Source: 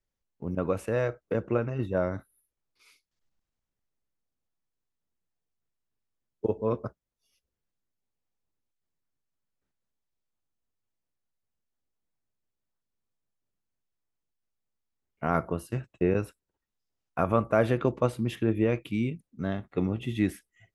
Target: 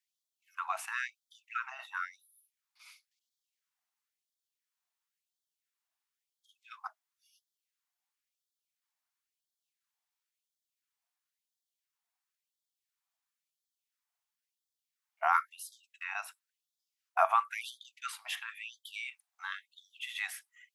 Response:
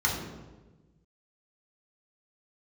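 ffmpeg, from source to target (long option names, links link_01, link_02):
-af "afftfilt=real='re*gte(b*sr/1024,630*pow(3200/630,0.5+0.5*sin(2*PI*0.97*pts/sr)))':imag='im*gte(b*sr/1024,630*pow(3200/630,0.5+0.5*sin(2*PI*0.97*pts/sr)))':win_size=1024:overlap=0.75,volume=4dB"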